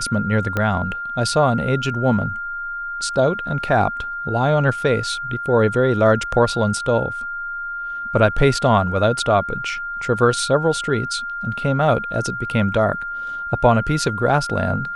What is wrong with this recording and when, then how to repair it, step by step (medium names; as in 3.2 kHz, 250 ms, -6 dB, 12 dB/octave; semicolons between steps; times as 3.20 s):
whine 1.4 kHz -25 dBFS
0.57 s: pop -9 dBFS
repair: de-click; band-stop 1.4 kHz, Q 30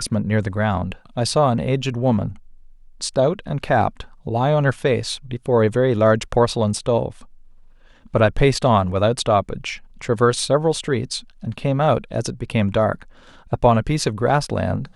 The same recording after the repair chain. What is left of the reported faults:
0.57 s: pop